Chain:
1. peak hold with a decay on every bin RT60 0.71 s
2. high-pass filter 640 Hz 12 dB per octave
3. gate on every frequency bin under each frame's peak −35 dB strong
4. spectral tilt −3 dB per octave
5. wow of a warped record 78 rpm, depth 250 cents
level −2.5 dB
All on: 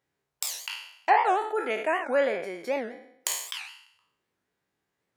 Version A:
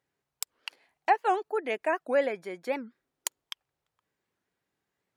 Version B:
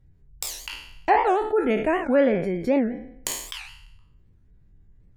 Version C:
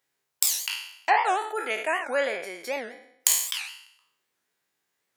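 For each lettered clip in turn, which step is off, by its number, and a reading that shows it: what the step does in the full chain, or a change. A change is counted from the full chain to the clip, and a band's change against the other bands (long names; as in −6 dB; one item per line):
1, 250 Hz band +3.0 dB
2, 250 Hz band +14.5 dB
4, 8 kHz band +9.5 dB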